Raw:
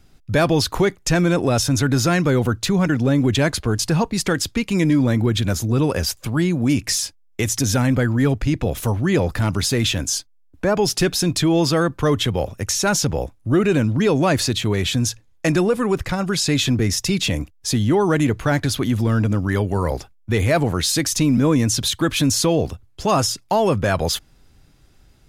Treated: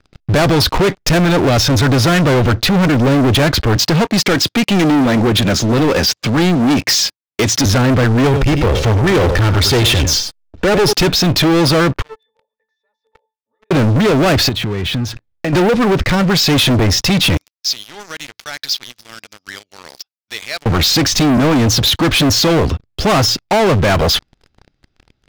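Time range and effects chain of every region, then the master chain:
0:03.76–0:07.66: high-pass filter 150 Hz + high-shelf EQ 4,500 Hz +4 dB
0:08.24–0:10.93: comb filter 2.2 ms, depth 48% + single-tap delay 95 ms −11.5 dB
0:12.02–0:13.71: high-pass filter 590 Hz 24 dB per octave + downward compressor 2 to 1, threshold −39 dBFS + resonances in every octave A, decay 0.21 s
0:14.49–0:15.53: high-shelf EQ 4,700 Hz −11.5 dB + downward compressor, threshold −31 dBFS
0:17.37–0:20.66: resonant band-pass 5,300 Hz, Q 2.7 + one half of a high-frequency compander encoder only
whole clip: low-pass filter 5,200 Hz 24 dB per octave; notch filter 1,000 Hz, Q 15; leveller curve on the samples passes 5; level −2 dB

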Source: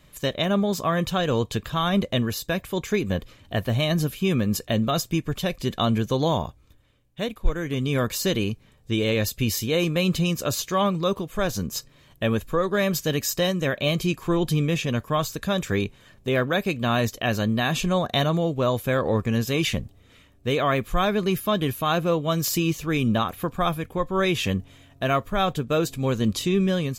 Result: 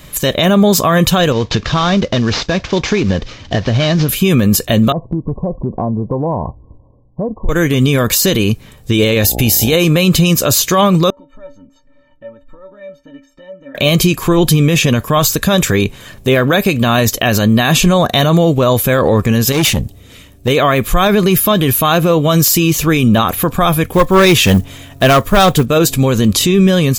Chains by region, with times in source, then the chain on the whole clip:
0:01.32–0:04.09: variable-slope delta modulation 32 kbit/s + downward compressor 10 to 1, threshold −25 dBFS
0:04.92–0:07.49: Chebyshev low-pass filter 1,100 Hz, order 10 + downward compressor 4 to 1, threshold −32 dBFS
0:09.21–0:09.74: noise gate −41 dBFS, range −15 dB + high-shelf EQ 9,000 Hz +9 dB + hum with harmonics 60 Hz, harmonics 14, −38 dBFS −3 dB per octave
0:11.10–0:13.75: downward compressor 3 to 1, threshold −39 dBFS + low-pass filter 1,400 Hz + stiff-string resonator 270 Hz, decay 0.25 s, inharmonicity 0.03
0:19.52–0:20.48: parametric band 1,300 Hz −5 dB 1.9 octaves + tube saturation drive 26 dB, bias 0.35
0:23.89–0:25.66: one scale factor per block 7 bits + hard clipping −19 dBFS
whole clip: high-shelf EQ 7,700 Hz +8 dB; boost into a limiter +18 dB; level −1 dB

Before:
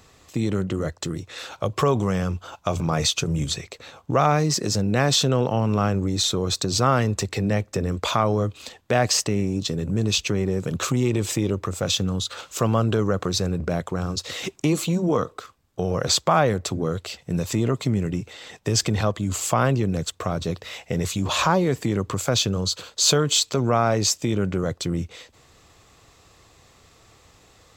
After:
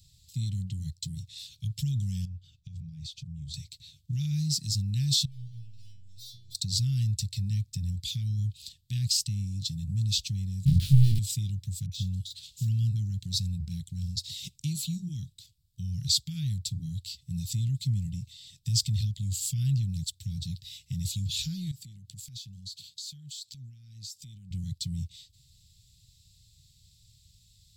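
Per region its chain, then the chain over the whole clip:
0:02.25–0:03.54: low-pass filter 1,600 Hz 6 dB per octave + downward compressor 4 to 1, threshold −32 dBFS
0:05.25–0:06.55: low-pass filter 7,200 Hz + hard clipping −25.5 dBFS + stiff-string resonator 120 Hz, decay 0.63 s, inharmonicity 0.002
0:10.65–0:11.19: low-pass filter 1,100 Hz + leveller curve on the samples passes 5 + double-tracking delay 22 ms −3 dB
0:11.86–0:12.96: de-essing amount 75% + all-pass dispersion highs, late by 57 ms, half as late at 840 Hz
0:21.71–0:24.51: high-pass filter 120 Hz + downward compressor, threshold −34 dBFS
whole clip: elliptic band-stop filter 140–3,900 Hz, stop band 60 dB; parametric band 6,300 Hz −7 dB 0.27 octaves; level −2 dB

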